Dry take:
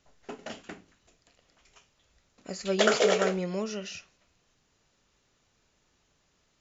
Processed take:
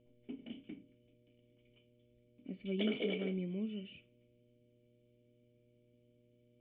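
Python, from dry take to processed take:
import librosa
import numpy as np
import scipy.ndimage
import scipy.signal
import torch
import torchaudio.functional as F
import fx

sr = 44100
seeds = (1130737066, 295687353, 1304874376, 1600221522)

y = fx.formant_cascade(x, sr, vowel='i')
y = fx.dmg_buzz(y, sr, base_hz=120.0, harmonics=5, level_db=-73.0, tilt_db=-2, odd_only=False)
y = y * 10.0 ** (3.0 / 20.0)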